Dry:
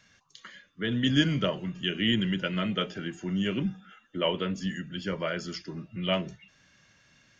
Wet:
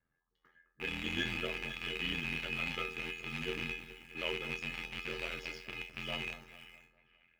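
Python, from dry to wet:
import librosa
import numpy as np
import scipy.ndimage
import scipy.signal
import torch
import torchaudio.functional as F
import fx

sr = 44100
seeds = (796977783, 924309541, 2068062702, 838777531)

p1 = fx.rattle_buzz(x, sr, strikes_db=-40.0, level_db=-14.0)
p2 = p1 + fx.echo_split(p1, sr, split_hz=1700.0, low_ms=212, high_ms=505, feedback_pct=52, wet_db=-12.0, dry=0)
p3 = fx.env_lowpass(p2, sr, base_hz=1100.0, full_db=-23.5)
p4 = fx.quant_dither(p3, sr, seeds[0], bits=6, dither='none')
p5 = p3 + (p4 * 10.0 ** (-10.5 / 20.0))
p6 = fx.comb_fb(p5, sr, f0_hz=420.0, decay_s=0.3, harmonics='all', damping=0.0, mix_pct=90)
p7 = p6 * np.sin(2.0 * np.pi * 42.0 * np.arange(len(p6)) / sr)
y = p7 * 10.0 ** (2.0 / 20.0)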